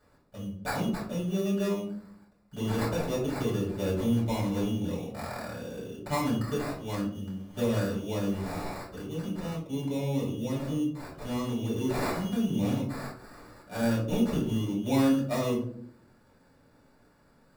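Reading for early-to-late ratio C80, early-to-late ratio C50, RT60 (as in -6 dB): 9.0 dB, 5.0 dB, 0.60 s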